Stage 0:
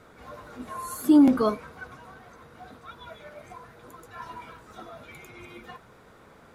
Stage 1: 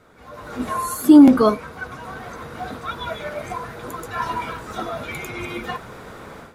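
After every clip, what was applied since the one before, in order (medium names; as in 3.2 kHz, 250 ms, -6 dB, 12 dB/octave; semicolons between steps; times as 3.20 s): level rider gain up to 16 dB; trim -1 dB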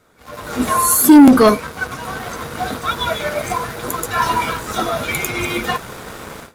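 treble shelf 4.5 kHz +10.5 dB; waveshaping leveller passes 2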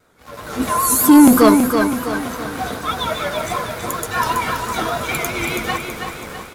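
vibrato 5.1 Hz 74 cents; on a send: feedback delay 327 ms, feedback 46%, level -6 dB; on the sum: trim -2 dB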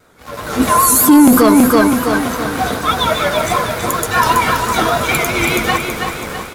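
loudness maximiser +8 dB; trim -1 dB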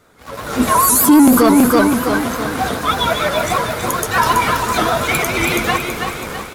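vibrato with a chosen wave saw up 6.7 Hz, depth 100 cents; trim -1.5 dB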